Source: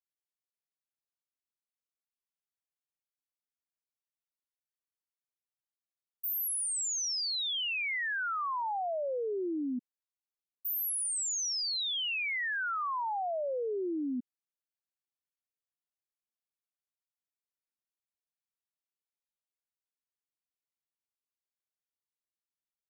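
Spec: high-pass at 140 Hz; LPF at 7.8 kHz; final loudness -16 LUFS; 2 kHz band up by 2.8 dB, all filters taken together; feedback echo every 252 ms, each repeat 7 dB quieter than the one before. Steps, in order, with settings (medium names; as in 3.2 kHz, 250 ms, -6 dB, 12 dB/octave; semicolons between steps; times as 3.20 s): high-pass 140 Hz; low-pass 7.8 kHz; peaking EQ 2 kHz +3.5 dB; feedback delay 252 ms, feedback 45%, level -7 dB; trim +14.5 dB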